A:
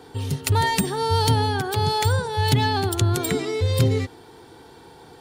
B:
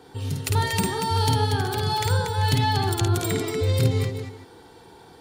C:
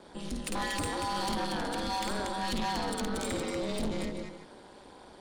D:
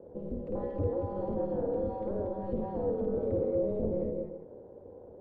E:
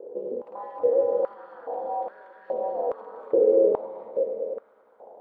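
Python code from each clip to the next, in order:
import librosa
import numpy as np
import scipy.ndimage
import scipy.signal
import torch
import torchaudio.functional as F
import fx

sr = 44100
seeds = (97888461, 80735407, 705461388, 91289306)

y1 = fx.echo_multitap(x, sr, ms=(52, 236, 389), db=(-3.5, -6.5, -16.0))
y1 = y1 * librosa.db_to_amplitude(-4.0)
y2 = scipy.signal.sosfilt(scipy.signal.ellip(3, 1.0, 40, [120.0, 9700.0], 'bandpass', fs=sr, output='sos'), y1)
y2 = y2 * np.sin(2.0 * np.pi * 100.0 * np.arange(len(y2)) / sr)
y2 = 10.0 ** (-27.5 / 20.0) * np.tanh(y2 / 10.0 ** (-27.5 / 20.0))
y3 = fx.lowpass_res(y2, sr, hz=500.0, q=5.4)
y3 = fx.peak_eq(y3, sr, hz=96.0, db=13.5, octaves=0.87)
y3 = y3 * librosa.db_to_amplitude(-4.5)
y4 = fx.echo_heads(y3, sr, ms=100, heads='second and third', feedback_pct=70, wet_db=-10)
y4 = fx.filter_held_highpass(y4, sr, hz=2.4, low_hz=430.0, high_hz=1600.0)
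y4 = y4 * librosa.db_to_amplitude(1.0)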